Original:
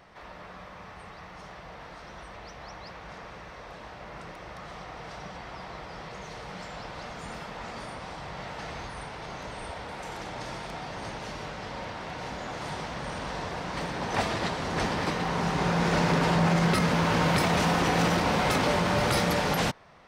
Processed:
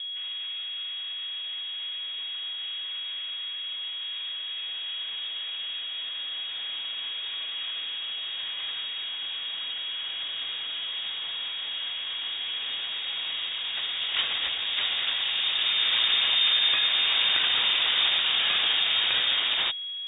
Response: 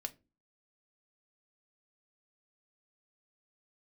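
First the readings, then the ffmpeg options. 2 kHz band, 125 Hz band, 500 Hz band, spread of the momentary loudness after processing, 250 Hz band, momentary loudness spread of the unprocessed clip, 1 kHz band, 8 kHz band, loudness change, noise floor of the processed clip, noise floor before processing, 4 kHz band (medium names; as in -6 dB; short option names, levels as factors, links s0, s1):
+1.5 dB, under -25 dB, -18.0 dB, 11 LU, under -25 dB, 20 LU, -11.0 dB, under -40 dB, +2.5 dB, -35 dBFS, -46 dBFS, +15.0 dB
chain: -af "aeval=exprs='val(0)+0.0251*sin(2*PI*480*n/s)':c=same,lowpass=f=3200:t=q:w=0.5098,lowpass=f=3200:t=q:w=0.6013,lowpass=f=3200:t=q:w=0.9,lowpass=f=3200:t=q:w=2.563,afreqshift=-3800"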